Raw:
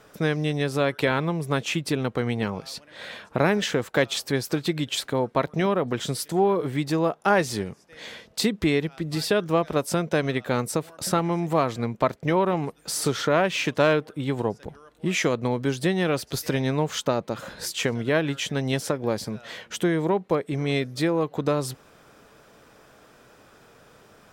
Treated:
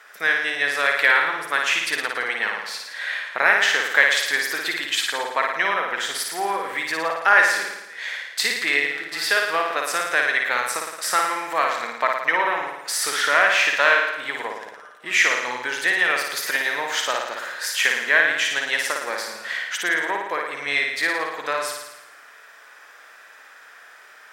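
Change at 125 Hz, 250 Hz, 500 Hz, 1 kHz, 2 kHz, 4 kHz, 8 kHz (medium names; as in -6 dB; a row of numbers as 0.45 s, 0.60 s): under -25 dB, -14.5 dB, -4.5 dB, +5.0 dB, +13.5 dB, +6.5 dB, +5.0 dB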